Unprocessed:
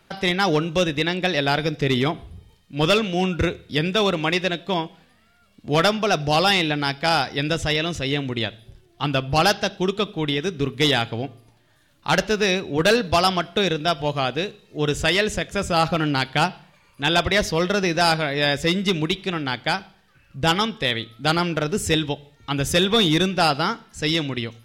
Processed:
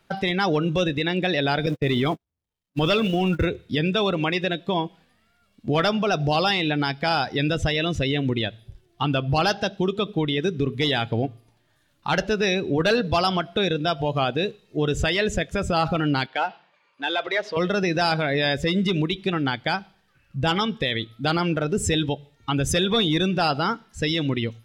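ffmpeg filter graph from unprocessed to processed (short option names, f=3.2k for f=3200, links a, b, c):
-filter_complex "[0:a]asettb=1/sr,asplit=3[a][b][c];[a]atrim=end=1.664[d];[b]atrim=start=1.66:end=3.45,asetpts=PTS-STARTPTS,afade=t=in:d=0.004:c=qsin,afade=t=out:st=1.786:d=0.004:c=qsin,aeval=exprs='val(0)+0.5*0.0422*sgn(val(0))':c=same,agate=range=-50dB:threshold=-25dB:ratio=16:release=100:detection=peak[e];[c]atrim=start=3.446[f];[d][e]acrossfade=d=0.004:c1=hsin:c2=qsin[g];[g][f]acrossfade=d=0.004:c1=qsin:c2=hsin,asettb=1/sr,asplit=3[h][i][j];[h]atrim=end=16.264[k];[i]atrim=start=16.26:end=17.57,asetpts=PTS-STARTPTS,afade=t=in:d=0.004:c=qsin,afade=t=out:st=1.306:d=0.004:c=qsin,acompressor=threshold=-22dB:ratio=3:attack=3.2:release=140:knee=1:detection=peak,aeval=exprs='clip(val(0),-1,0.0398)':c=same,highpass=380,lowpass=3.9k[l];[j]atrim=start=17.566[m];[k][l]acrossfade=d=0.004:c1=hsin:c2=qsin[n];[n][m]acrossfade=d=0.004:c1=qsin:c2=hsin,afftdn=nr=12:nf=-28,alimiter=limit=-20dB:level=0:latency=1:release=123,volume=6.5dB"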